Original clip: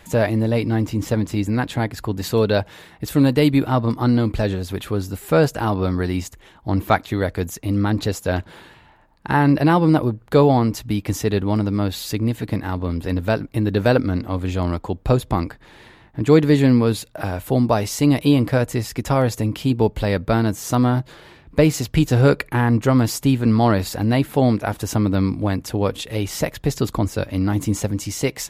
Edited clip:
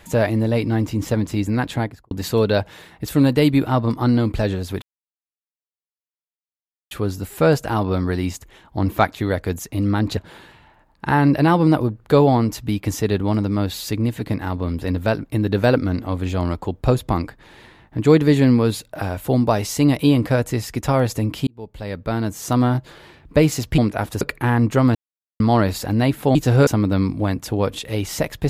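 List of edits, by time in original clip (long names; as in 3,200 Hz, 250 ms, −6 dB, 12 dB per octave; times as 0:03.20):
0:01.75–0:02.11: fade out and dull
0:04.82: splice in silence 2.09 s
0:08.08–0:08.39: remove
0:19.69–0:20.83: fade in
0:22.00–0:22.32: swap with 0:24.46–0:24.89
0:23.06–0:23.51: silence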